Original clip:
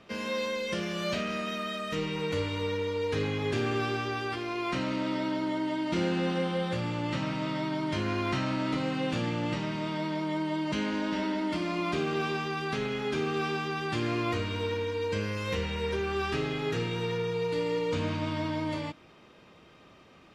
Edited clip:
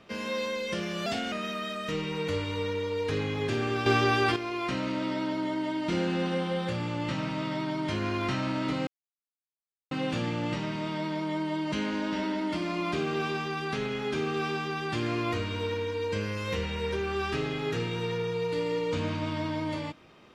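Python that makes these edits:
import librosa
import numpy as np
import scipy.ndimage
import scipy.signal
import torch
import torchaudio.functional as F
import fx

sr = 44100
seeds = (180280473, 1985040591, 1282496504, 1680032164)

y = fx.edit(x, sr, fx.speed_span(start_s=1.06, length_s=0.3, speed=1.15),
    fx.clip_gain(start_s=3.9, length_s=0.5, db=8.5),
    fx.insert_silence(at_s=8.91, length_s=1.04), tone=tone)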